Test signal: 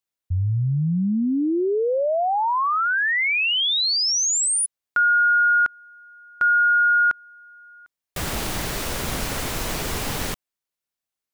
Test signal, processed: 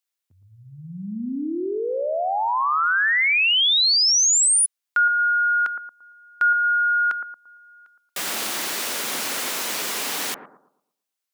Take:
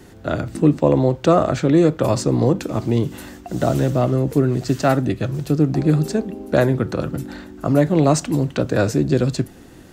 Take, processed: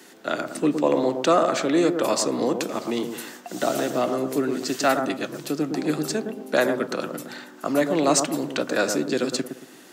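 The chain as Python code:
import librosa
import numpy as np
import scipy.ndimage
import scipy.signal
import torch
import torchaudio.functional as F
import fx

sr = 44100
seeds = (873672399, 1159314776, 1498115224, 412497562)

p1 = scipy.signal.sosfilt(scipy.signal.butter(4, 210.0, 'highpass', fs=sr, output='sos'), x)
p2 = fx.tilt_shelf(p1, sr, db=-5.5, hz=970.0)
p3 = p2 + fx.echo_bbd(p2, sr, ms=114, stages=1024, feedback_pct=34, wet_db=-6.5, dry=0)
y = p3 * librosa.db_to_amplitude(-1.5)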